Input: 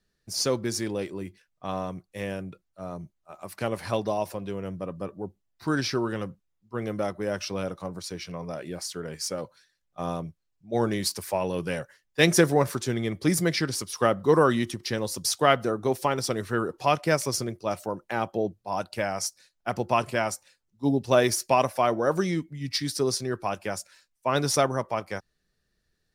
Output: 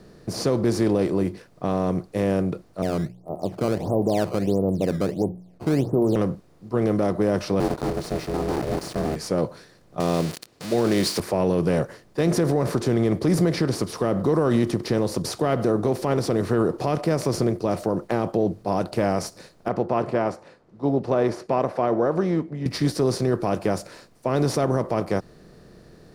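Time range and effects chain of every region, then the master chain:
0:02.82–0:06.16: Butterworth low-pass 840 Hz 48 dB per octave + mains-hum notches 60/120/180 Hz + sample-and-hold swept by an LFO 14×, swing 160% 1.5 Hz
0:07.60–0:09.16: one scale factor per block 3 bits + ring modulation 240 Hz + transient designer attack −4 dB, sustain 0 dB
0:10.00–0:11.20: spike at every zero crossing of −27.5 dBFS + meter weighting curve D
0:19.68–0:22.66: low-pass filter 1,100 Hz + spectral tilt +4 dB per octave
whole clip: compressor on every frequency bin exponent 0.6; tilt shelving filter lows +8.5 dB, about 930 Hz; brickwall limiter −10 dBFS; level −1.5 dB

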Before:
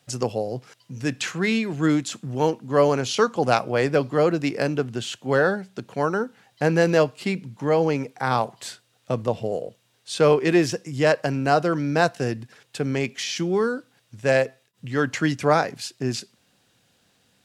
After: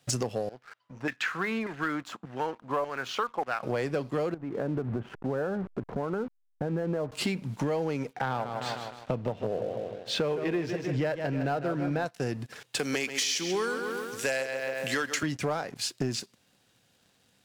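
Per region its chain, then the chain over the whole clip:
0:00.49–0:03.63: low-shelf EQ 330 Hz +9 dB + auto-filter band-pass saw down 1.7 Hz 880–1,900 Hz
0:04.34–0:07.12: hold until the input has moved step −41 dBFS + Gaussian smoothing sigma 5.8 samples + downward compressor 4 to 1, threshold −34 dBFS
0:08.13–0:12.06: low-pass filter 3,100 Hz + notch filter 1,100 Hz, Q 9.7 + feedback echo with a swinging delay time 154 ms, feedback 43%, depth 97 cents, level −10.5 dB
0:12.79–0:15.23: high-pass filter 160 Hz + spectral tilt +3.5 dB per octave + feedback echo with a low-pass in the loop 136 ms, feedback 54%, low-pass 4,500 Hz, level −10 dB
whole clip: downward compressor 12 to 1, threshold −33 dBFS; leveller curve on the samples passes 2

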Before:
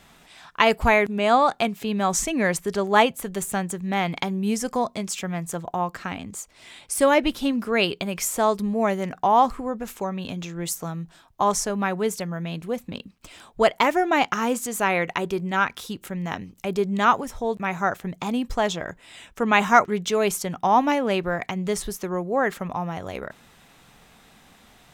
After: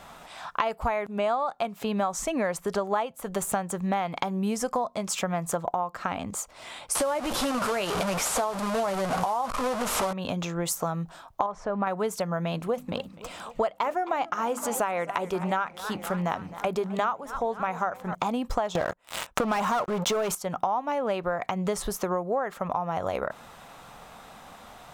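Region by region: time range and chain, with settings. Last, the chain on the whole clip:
0:06.95–0:10.13: linear delta modulator 64 kbit/s, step −20.5 dBFS + downward compressor, threshold −19 dBFS + double-tracking delay 16 ms −12.5 dB
0:11.46–0:11.87: mu-law and A-law mismatch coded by mu + low-pass filter 2,100 Hz + downward compressor 1.5 to 1, threshold −31 dBFS
0:12.52–0:18.15: mains-hum notches 50/100/150/200/250/300 Hz + feedback echo with a swinging delay time 257 ms, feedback 59%, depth 174 cents, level −19 dB
0:18.75–0:20.35: leveller curve on the samples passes 5 + downward compressor, threshold −12 dBFS
whole clip: flat-topped bell 840 Hz +8.5 dB; downward compressor 12 to 1, threshold −26 dBFS; level +2 dB

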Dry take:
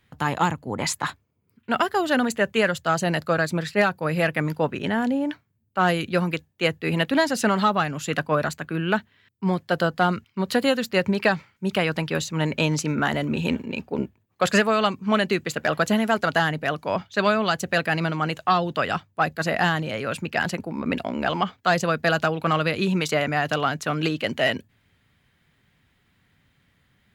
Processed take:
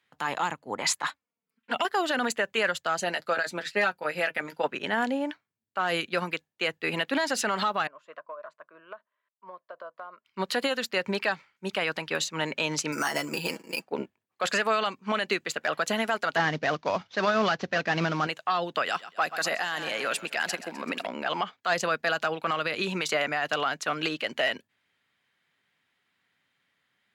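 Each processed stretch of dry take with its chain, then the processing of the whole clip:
0:01.09–0:01.85: parametric band 370 Hz −14 dB 0.21 octaves + flanger swept by the level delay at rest 4.7 ms, full sweep at −19.5 dBFS
0:02.97–0:04.68: notch filter 1,100 Hz, Q 8 + notch comb filter 160 Hz
0:07.87–0:10.25: pair of resonant band-passes 800 Hz, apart 0.72 octaves + downward compressor 16 to 1, threshold −32 dBFS
0:12.92–0:13.88: parametric band 63 Hz −12.5 dB 1.7 octaves + comb filter 6.1 ms, depth 60% + bad sample-rate conversion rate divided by 6×, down filtered, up hold
0:16.36–0:18.27: variable-slope delta modulation 32 kbit/s + low-shelf EQ 280 Hz +11.5 dB
0:18.86–0:21.07: high-pass filter 180 Hz + high-shelf EQ 4,300 Hz +9.5 dB + repeating echo 128 ms, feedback 54%, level −15.5 dB
whole clip: meter weighting curve A; brickwall limiter −18.5 dBFS; expander for the loud parts 1.5 to 1, over −46 dBFS; level +3.5 dB

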